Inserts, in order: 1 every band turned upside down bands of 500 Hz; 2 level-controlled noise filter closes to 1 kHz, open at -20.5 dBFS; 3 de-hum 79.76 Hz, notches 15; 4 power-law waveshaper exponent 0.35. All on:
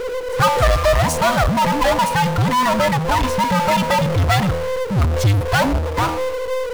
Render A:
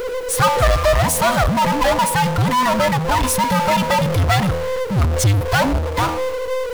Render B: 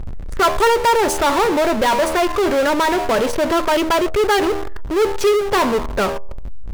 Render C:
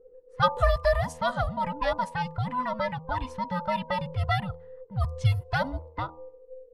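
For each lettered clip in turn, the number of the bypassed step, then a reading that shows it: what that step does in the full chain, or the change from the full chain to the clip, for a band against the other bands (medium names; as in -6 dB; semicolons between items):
2, 8 kHz band +5.0 dB; 1, 125 Hz band -17.0 dB; 4, crest factor change +11.5 dB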